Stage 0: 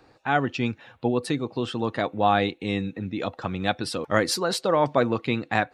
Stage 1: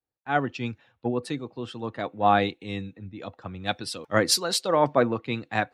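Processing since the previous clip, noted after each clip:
multiband upward and downward expander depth 100%
level −3 dB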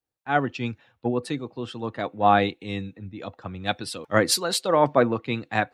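dynamic equaliser 5,500 Hz, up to −5 dB, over −45 dBFS, Q 2.3
level +2 dB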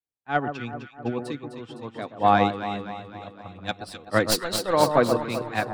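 stylus tracing distortion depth 0.049 ms
delay that swaps between a low-pass and a high-pass 128 ms, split 1,300 Hz, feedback 80%, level −5 dB
expander for the loud parts 1.5 to 1, over −38 dBFS

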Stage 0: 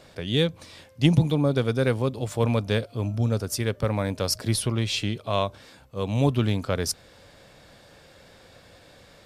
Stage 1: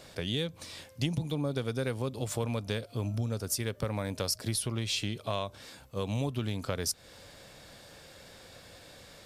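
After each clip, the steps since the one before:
high-shelf EQ 4,200 Hz +7.5 dB
downward compressor 6 to 1, threshold −27 dBFS, peak gain reduction 13 dB
level −1.5 dB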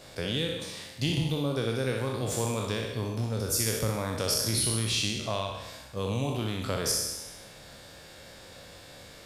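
peak hold with a decay on every bin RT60 1.09 s
on a send: flutter between parallel walls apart 10.7 metres, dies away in 0.46 s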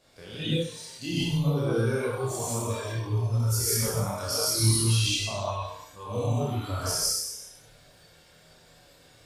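reverb whose tail is shaped and stops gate 190 ms rising, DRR −4 dB
multi-voice chorus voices 4, 0.22 Hz, delay 29 ms, depth 4 ms
noise reduction from a noise print of the clip's start 10 dB

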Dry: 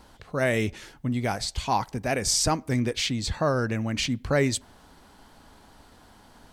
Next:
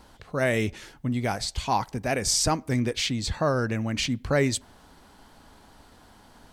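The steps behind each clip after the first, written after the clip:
no processing that can be heard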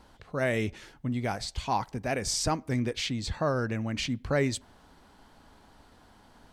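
high-shelf EQ 6,300 Hz −6 dB
level −3.5 dB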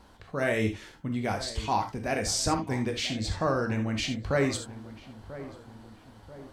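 feedback echo with a low-pass in the loop 989 ms, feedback 52%, low-pass 1,300 Hz, level −14.5 dB
reverb whose tail is shaped and stops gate 100 ms flat, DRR 4 dB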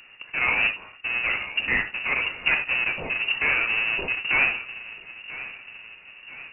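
each half-wave held at its own peak
voice inversion scrambler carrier 2,800 Hz

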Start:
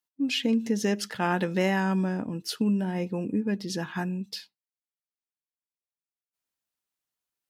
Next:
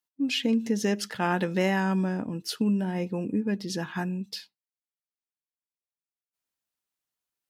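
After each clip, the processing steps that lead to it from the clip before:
no processing that can be heard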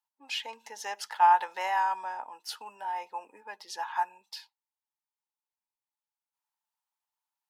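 four-pole ladder high-pass 830 Hz, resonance 80%
level +7 dB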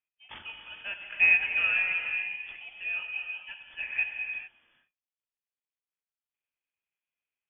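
running median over 15 samples
voice inversion scrambler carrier 3,400 Hz
reverb whose tail is shaped and stops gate 460 ms flat, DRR 3 dB

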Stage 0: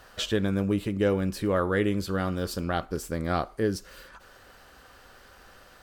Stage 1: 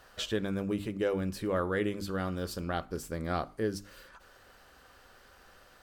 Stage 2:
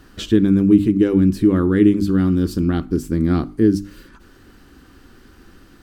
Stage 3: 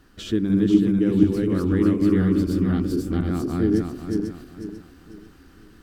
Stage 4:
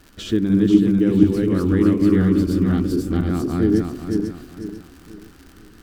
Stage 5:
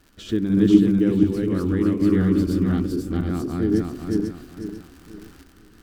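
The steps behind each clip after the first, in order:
mains-hum notches 50/100/150/200/250/300 Hz; level −5 dB
low shelf with overshoot 420 Hz +10.5 dB, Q 3; level +5.5 dB
feedback delay that plays each chunk backwards 247 ms, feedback 58%, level 0 dB; level −8 dB
surface crackle 130 per second −38 dBFS; level +3 dB
sample-and-hold tremolo

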